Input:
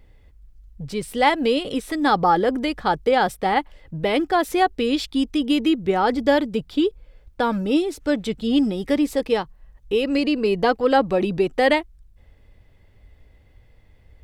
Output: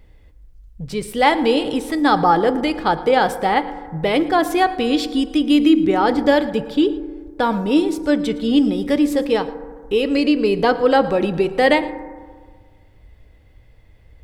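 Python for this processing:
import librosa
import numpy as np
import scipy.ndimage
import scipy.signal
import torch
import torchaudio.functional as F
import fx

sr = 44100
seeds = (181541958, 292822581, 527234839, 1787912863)

y = x + 10.0 ** (-19.5 / 20.0) * np.pad(x, (int(113 * sr / 1000.0), 0))[:len(x)]
y = fx.rev_fdn(y, sr, rt60_s=1.7, lf_ratio=0.95, hf_ratio=0.3, size_ms=19.0, drr_db=11.5)
y = y * librosa.db_to_amplitude(2.5)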